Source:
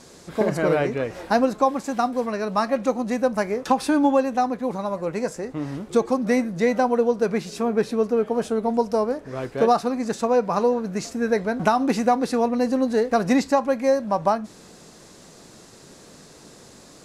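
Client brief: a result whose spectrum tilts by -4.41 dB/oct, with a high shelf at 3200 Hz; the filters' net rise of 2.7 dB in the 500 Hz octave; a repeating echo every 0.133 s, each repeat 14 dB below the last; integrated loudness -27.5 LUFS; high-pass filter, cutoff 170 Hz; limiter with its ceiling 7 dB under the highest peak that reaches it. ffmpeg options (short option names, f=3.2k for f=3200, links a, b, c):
-af "highpass=170,equalizer=f=500:t=o:g=3,highshelf=f=3.2k:g=3.5,alimiter=limit=-10.5dB:level=0:latency=1,aecho=1:1:133|266:0.2|0.0399,volume=-5dB"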